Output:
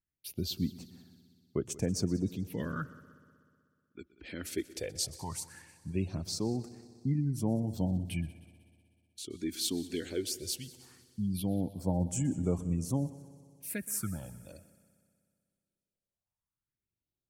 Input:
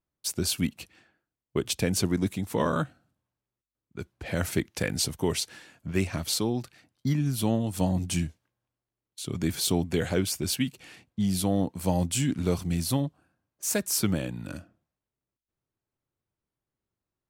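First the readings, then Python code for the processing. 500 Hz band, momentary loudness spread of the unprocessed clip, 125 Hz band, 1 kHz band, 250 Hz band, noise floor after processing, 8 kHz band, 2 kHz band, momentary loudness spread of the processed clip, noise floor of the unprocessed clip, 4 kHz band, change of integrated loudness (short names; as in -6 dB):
-8.0 dB, 12 LU, -5.0 dB, -11.0 dB, -6.0 dB, under -85 dBFS, -8.0 dB, -11.0 dB, 16 LU, under -85 dBFS, -8.0 dB, -6.5 dB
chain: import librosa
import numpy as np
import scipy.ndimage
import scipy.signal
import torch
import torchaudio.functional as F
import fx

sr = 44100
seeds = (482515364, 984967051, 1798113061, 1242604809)

y = fx.spec_gate(x, sr, threshold_db=-30, keep='strong')
y = fx.phaser_stages(y, sr, stages=4, low_hz=120.0, high_hz=4000.0, hz=0.18, feedback_pct=45)
y = fx.echo_heads(y, sr, ms=62, heads='second and third', feedback_pct=60, wet_db=-20.0)
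y = F.gain(torch.from_numpy(y), -7.0).numpy()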